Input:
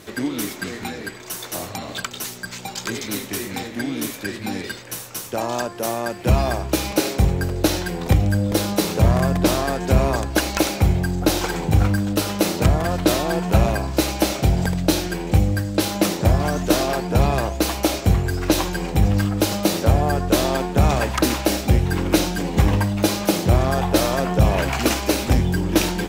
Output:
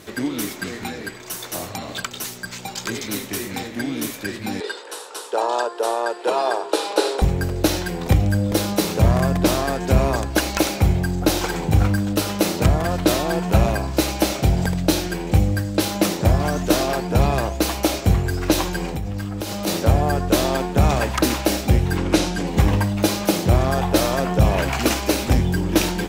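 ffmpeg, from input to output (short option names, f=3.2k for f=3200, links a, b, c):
-filter_complex "[0:a]asettb=1/sr,asplit=3[a][b][c];[a]atrim=end=4.604[d];[b]atrim=start=4.6:end=7.22,asetpts=PTS-STARTPTS,afade=t=in:d=0.004:c=qsin,afade=t=out:st=2.616:d=0.004:c=qsin,highpass=f=370:w=0.5412,highpass=f=370:w=1.3066,equalizer=f=440:t=q:w=4:g=10,equalizer=f=910:t=q:w=4:g=8,equalizer=f=1.4k:t=q:w=4:g=4,equalizer=f=2.2k:t=q:w=4:g=-7,equalizer=f=3.8k:t=q:w=4:g=4,equalizer=f=6.2k:t=q:w=4:g=-7,lowpass=f=9.9k:w=0.5412,lowpass=f=9.9k:w=1.3066[e];[c]atrim=start=7.216[f];[d][e]acrossfade=d=0.004:c1=hsin:c2=qsin[g];[g][f]acrossfade=d=0.004:c1=qsin:c2=hsin,asplit=3[h][i][j];[h]afade=t=out:st=18.89:d=0.02[k];[i]acompressor=threshold=-23dB:ratio=6:attack=3.2:release=140:knee=1:detection=peak,afade=t=in:st=18.89:d=0.02,afade=t=out:st=19.66:d=0.02[l];[j]afade=t=in:st=19.66:d=0.02[m];[k][l][m]amix=inputs=3:normalize=0,asettb=1/sr,asplit=3[n][o][p];[n]atrim=end=21.974[q];[o]atrim=start=21.97:end=22.47,asetpts=PTS-STARTPTS,afade=t=in:d=0.004:c=qsin,afade=t=out:st=0.496:d=0.004:c=qsin,lowpass=9.7k[r];[p]atrim=start=22.466[s];[q][r]acrossfade=d=0.004:c1=hsin:c2=qsin[t];[t][s]acrossfade=d=0.004:c1=qsin:c2=hsin"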